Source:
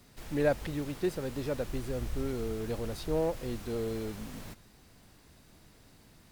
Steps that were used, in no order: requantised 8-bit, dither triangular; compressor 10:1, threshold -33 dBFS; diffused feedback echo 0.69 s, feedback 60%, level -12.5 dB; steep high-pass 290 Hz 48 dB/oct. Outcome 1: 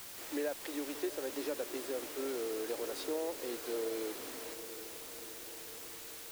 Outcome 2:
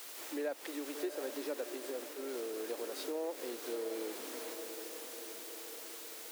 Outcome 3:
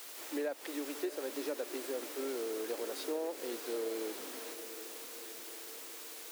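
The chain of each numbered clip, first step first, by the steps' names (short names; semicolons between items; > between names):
steep high-pass > compressor > diffused feedback echo > requantised; diffused feedback echo > requantised > compressor > steep high-pass; requantised > steep high-pass > compressor > diffused feedback echo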